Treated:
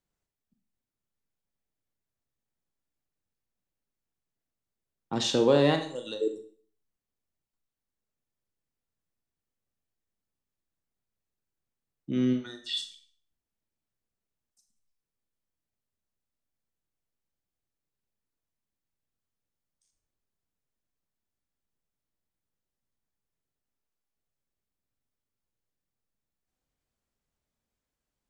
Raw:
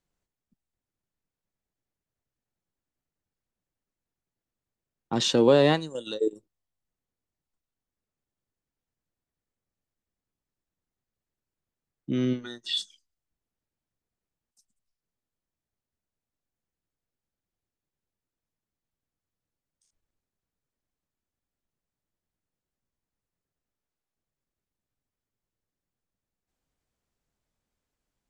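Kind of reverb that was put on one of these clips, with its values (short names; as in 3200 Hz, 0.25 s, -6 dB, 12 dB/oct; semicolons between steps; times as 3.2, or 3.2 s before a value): Schroeder reverb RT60 0.47 s, combs from 28 ms, DRR 6.5 dB; gain -3.5 dB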